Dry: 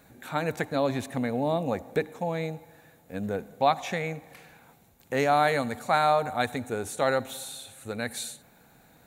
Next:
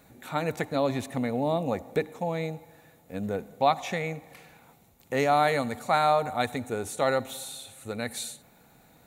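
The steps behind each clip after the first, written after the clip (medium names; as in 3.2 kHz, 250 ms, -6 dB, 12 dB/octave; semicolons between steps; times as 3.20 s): band-stop 1.6 kHz, Q 10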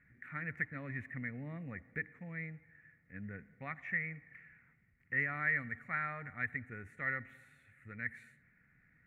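FFT filter 140 Hz 0 dB, 860 Hz -23 dB, 1.9 kHz +13 dB, 3.6 kHz -29 dB; trim -8.5 dB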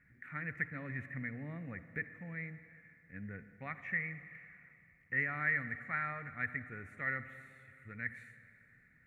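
reverberation RT60 3.0 s, pre-delay 47 ms, DRR 12.5 dB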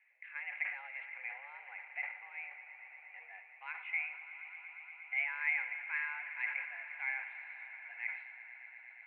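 echo with a slow build-up 118 ms, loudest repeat 5, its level -17 dB; mistuned SSB +270 Hz 510–3400 Hz; decay stretcher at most 85 dB/s; trim -1 dB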